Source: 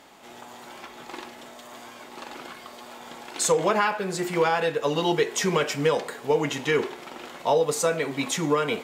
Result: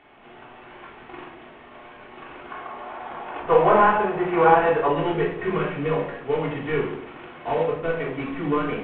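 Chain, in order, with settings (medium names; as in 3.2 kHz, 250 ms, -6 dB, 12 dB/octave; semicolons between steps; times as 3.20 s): CVSD coder 16 kbps; 2.51–4.88 s: peaking EQ 840 Hz +11 dB 1.7 oct; simulated room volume 1000 m³, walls furnished, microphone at 3.4 m; trim -4.5 dB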